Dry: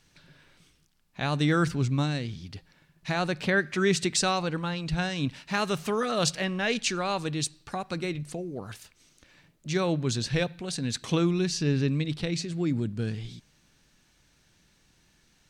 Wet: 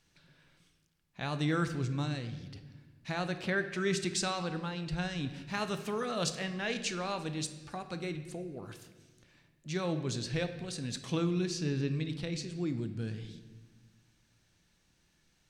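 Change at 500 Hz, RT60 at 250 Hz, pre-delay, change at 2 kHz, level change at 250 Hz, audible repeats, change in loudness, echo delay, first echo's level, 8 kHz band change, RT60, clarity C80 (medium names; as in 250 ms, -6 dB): -6.5 dB, 1.9 s, 6 ms, -7.0 dB, -6.5 dB, no echo, -6.5 dB, no echo, no echo, -7.0 dB, 1.3 s, 12.5 dB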